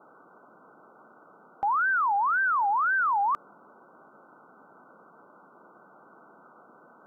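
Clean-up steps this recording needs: noise print and reduce 19 dB

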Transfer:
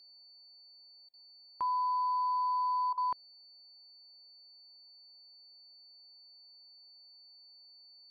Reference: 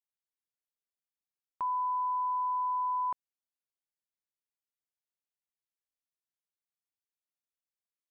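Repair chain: band-stop 4.5 kHz, Q 30; interpolate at 1.09/2.93 s, 45 ms; noise reduction 30 dB, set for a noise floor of -58 dBFS

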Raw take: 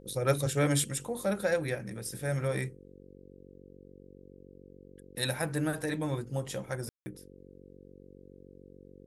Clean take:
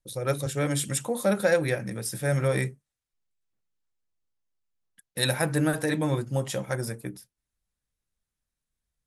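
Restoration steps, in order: de-hum 47 Hz, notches 11; room tone fill 6.89–7.06 s; trim 0 dB, from 0.84 s +6.5 dB

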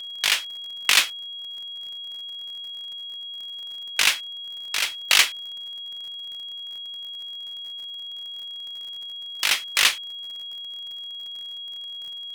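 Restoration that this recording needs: de-click; band-stop 3.3 kHz, Q 30

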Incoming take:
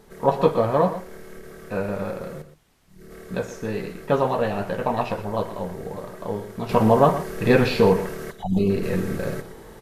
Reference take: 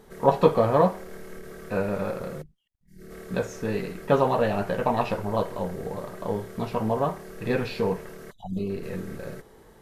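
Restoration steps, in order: expander -35 dBFS, range -21 dB; inverse comb 120 ms -12.5 dB; trim 0 dB, from 6.69 s -9 dB

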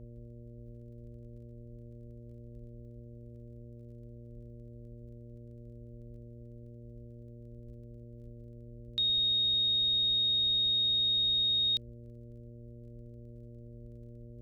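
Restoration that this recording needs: de-click; de-hum 118.3 Hz, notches 5; noise print and reduce 29 dB

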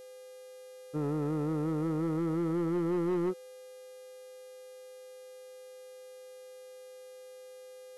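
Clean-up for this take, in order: clip repair -26.5 dBFS; de-hum 405.8 Hz, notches 31; band-stop 510 Hz, Q 30

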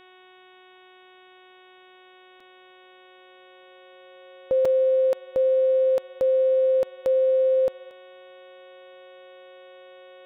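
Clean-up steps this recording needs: de-hum 369.4 Hz, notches 10; band-stop 540 Hz, Q 30; interpolate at 2.40/4.65 s, 4 ms; noise reduction 17 dB, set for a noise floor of -52 dBFS

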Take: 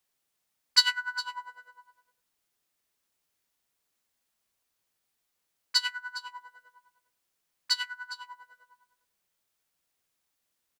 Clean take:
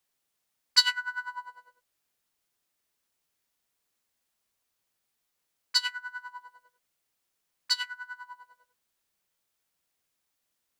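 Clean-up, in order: inverse comb 409 ms -16 dB

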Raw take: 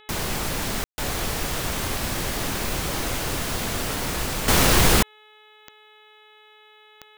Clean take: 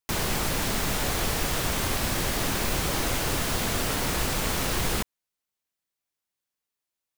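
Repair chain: de-click; de-hum 427 Hz, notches 9; room tone fill 0.84–0.98 s; gain correction -10 dB, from 4.48 s

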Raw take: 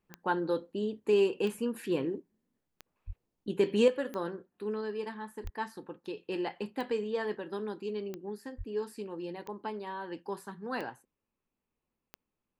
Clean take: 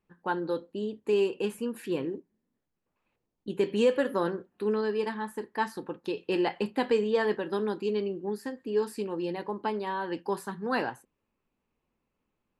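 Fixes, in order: de-click; 3.06–3.18 s: high-pass 140 Hz 24 dB/octave; 3.88 s: gain correction +7 dB; 5.43–5.55 s: high-pass 140 Hz 24 dB/octave; 8.57–8.69 s: high-pass 140 Hz 24 dB/octave

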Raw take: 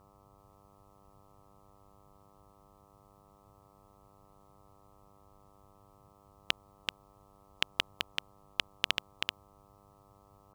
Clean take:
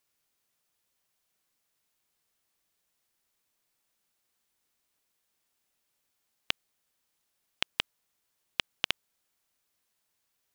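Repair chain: de-hum 99.7 Hz, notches 13; noise print and reduce 17 dB; inverse comb 384 ms -4.5 dB

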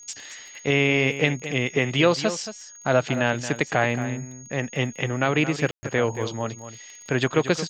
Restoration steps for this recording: de-click; band-stop 6.6 kHz, Q 30; room tone fill 5.71–5.83 s; inverse comb 225 ms -12 dB

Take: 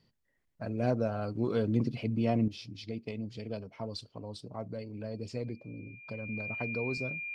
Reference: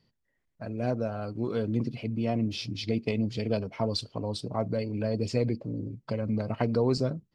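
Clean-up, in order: band-stop 2.4 kHz, Q 30; trim 0 dB, from 2.48 s +10 dB

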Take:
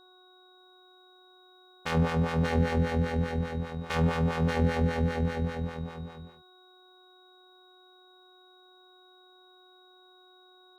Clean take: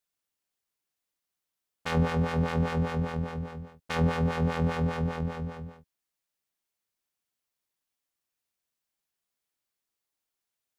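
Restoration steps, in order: clip repair -15 dBFS; de-hum 367.2 Hz, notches 4; band-stop 3.8 kHz, Q 30; inverse comb 582 ms -5 dB

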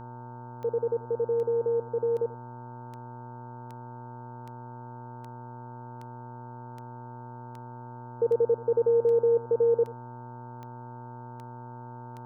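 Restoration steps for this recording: de-click; de-hum 121 Hz, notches 13; band-stop 900 Hz, Q 30; inverse comb 86 ms -19 dB

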